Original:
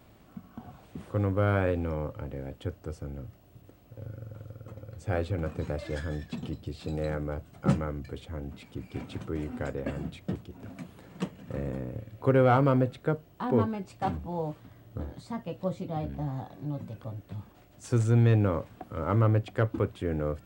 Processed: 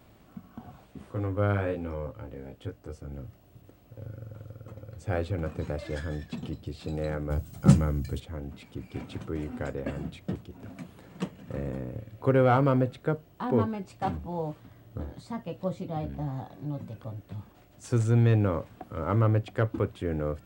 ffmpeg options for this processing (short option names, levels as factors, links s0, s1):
-filter_complex "[0:a]asplit=3[s0][s1][s2];[s0]afade=t=out:st=0.83:d=0.02[s3];[s1]flanger=delay=15:depth=4.7:speed=1,afade=t=in:st=0.83:d=0.02,afade=t=out:st=3.1:d=0.02[s4];[s2]afade=t=in:st=3.1:d=0.02[s5];[s3][s4][s5]amix=inputs=3:normalize=0,asettb=1/sr,asplit=3[s6][s7][s8];[s6]atrim=end=7.304[s9];[s7]atrim=start=7.3:end=8.2,asetpts=PTS-STARTPTS,afade=t=in:d=0.004:c=qsin,afade=t=out:st=0.896:d=0.004:c=qsin,bass=f=250:g=9,treble=f=4000:g=13[s10];[s8]atrim=start=8.196[s11];[s9][s10]acrossfade=d=0.004:c1=hsin:c2=qsin[s12];[s12][s11]acrossfade=d=0.004:c1=qsin:c2=hsin"